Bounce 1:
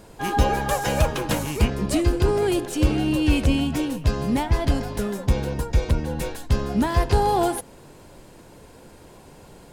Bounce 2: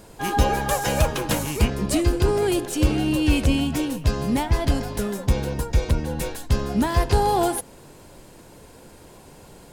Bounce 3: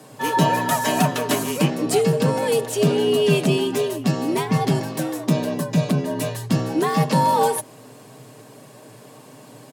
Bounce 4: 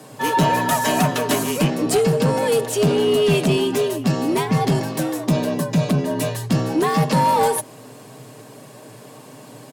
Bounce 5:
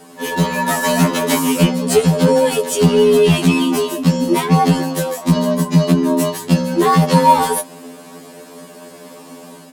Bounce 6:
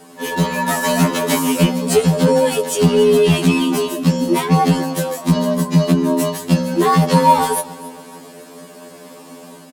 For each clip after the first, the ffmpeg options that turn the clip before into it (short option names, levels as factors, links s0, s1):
-af "highshelf=f=5200:g=4.5"
-af "aecho=1:1:6.1:0.43,afreqshift=110,volume=1.12"
-af "asoftclip=type=tanh:threshold=0.224,volume=1.41"
-af "dynaudnorm=f=560:g=3:m=1.58,afftfilt=real='re*2*eq(mod(b,4),0)':imag='im*2*eq(mod(b,4),0)':win_size=2048:overlap=0.75,volume=1.41"
-af "aecho=1:1:280|560|840:0.106|0.0455|0.0196,volume=0.891"